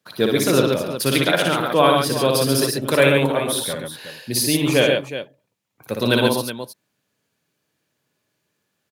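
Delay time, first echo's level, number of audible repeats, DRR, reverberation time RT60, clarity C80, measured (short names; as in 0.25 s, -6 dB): 59 ms, -3.5 dB, 3, none, none, none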